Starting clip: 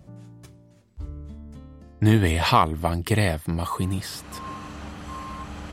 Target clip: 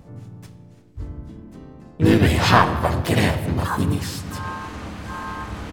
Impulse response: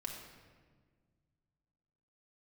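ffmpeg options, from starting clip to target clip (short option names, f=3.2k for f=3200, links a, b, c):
-filter_complex "[0:a]asplit=2[a][b];[1:a]atrim=start_sample=2205,highshelf=f=9.3k:g=-11[c];[b][c]afir=irnorm=-1:irlink=0,volume=-0.5dB[d];[a][d]amix=inputs=2:normalize=0,asplit=4[e][f][g][h];[f]asetrate=37084,aresample=44100,atempo=1.18921,volume=-5dB[i];[g]asetrate=52444,aresample=44100,atempo=0.840896,volume=-7dB[j];[h]asetrate=66075,aresample=44100,atempo=0.66742,volume=-5dB[k];[e][i][j][k]amix=inputs=4:normalize=0,volume=-3dB"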